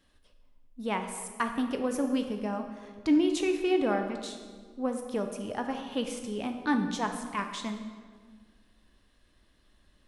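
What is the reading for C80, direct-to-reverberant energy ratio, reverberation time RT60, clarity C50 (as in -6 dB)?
8.5 dB, 5.0 dB, 1.6 s, 7.0 dB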